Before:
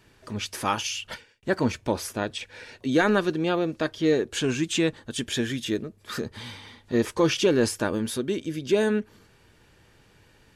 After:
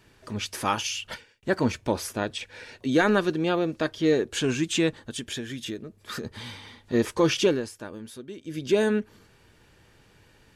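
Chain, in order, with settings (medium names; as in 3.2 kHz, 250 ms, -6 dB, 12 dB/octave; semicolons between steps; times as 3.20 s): 5.02–6.24 s: compression 6:1, threshold -31 dBFS, peak gain reduction 9.5 dB; 7.47–8.59 s: dip -12.5 dB, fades 0.16 s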